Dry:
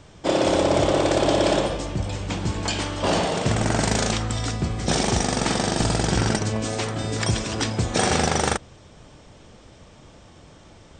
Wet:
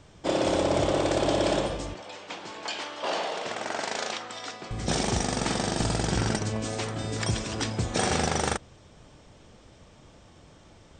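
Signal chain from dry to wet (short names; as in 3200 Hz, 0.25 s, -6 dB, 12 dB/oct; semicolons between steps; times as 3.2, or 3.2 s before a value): 1.94–4.71 BPF 510–5400 Hz; gain -5 dB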